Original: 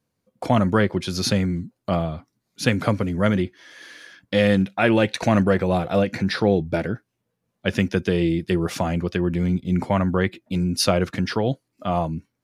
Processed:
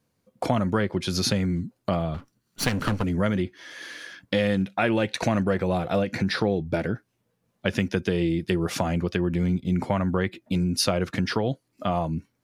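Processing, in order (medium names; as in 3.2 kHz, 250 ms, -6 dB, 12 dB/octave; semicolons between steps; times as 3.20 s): 2.14–3.04 s: comb filter that takes the minimum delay 0.68 ms; compression 2.5:1, threshold -27 dBFS, peak gain reduction 10 dB; trim +3.5 dB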